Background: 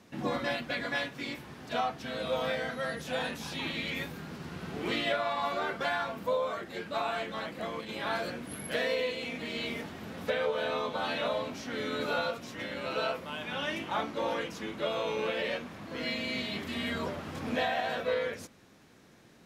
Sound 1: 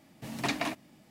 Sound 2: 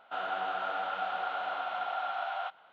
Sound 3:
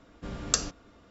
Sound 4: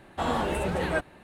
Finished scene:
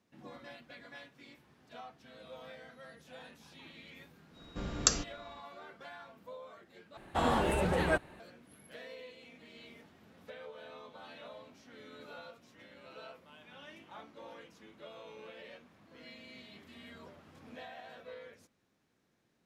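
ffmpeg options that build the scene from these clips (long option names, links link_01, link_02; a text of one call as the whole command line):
ffmpeg -i bed.wav -i cue0.wav -i cue1.wav -i cue2.wav -i cue3.wav -filter_complex "[0:a]volume=-18dB[link_01];[3:a]aeval=exprs='val(0)+0.00141*sin(2*PI*3800*n/s)':channel_layout=same[link_02];[link_01]asplit=2[link_03][link_04];[link_03]atrim=end=6.974[link_05];[4:a]atrim=end=1.23,asetpts=PTS-STARTPTS,volume=-2dB[link_06];[link_04]atrim=start=8.196[link_07];[link_02]atrim=end=1.1,asetpts=PTS-STARTPTS,volume=-1dB,afade=type=in:duration=0.05,afade=type=out:start_time=1.05:duration=0.05,adelay=190953S[link_08];[link_05][link_06]acrossfade=duration=0.004:curve1=hsin:curve2=hsin[link_09];[link_09][link_07]acrossfade=duration=0.004:curve1=hsin:curve2=hsin[link_10];[link_10][link_08]amix=inputs=2:normalize=0" out.wav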